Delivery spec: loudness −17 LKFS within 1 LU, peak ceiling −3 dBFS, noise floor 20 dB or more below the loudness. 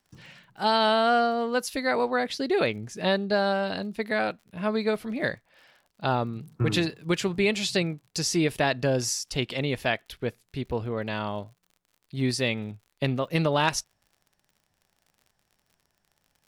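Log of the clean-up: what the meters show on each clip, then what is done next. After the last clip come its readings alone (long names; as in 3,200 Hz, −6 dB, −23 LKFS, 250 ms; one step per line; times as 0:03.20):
crackle rate 56 per second; integrated loudness −27.0 LKFS; sample peak −10.0 dBFS; target loudness −17.0 LKFS
→ click removal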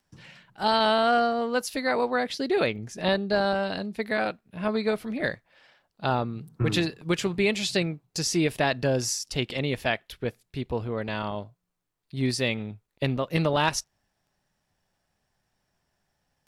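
crackle rate 0.49 per second; integrated loudness −27.0 LKFS; sample peak −10.0 dBFS; target loudness −17.0 LKFS
→ level +10 dB
brickwall limiter −3 dBFS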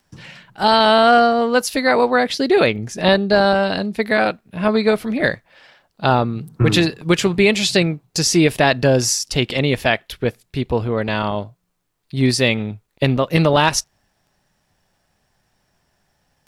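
integrated loudness −17.0 LKFS; sample peak −3.0 dBFS; background noise floor −68 dBFS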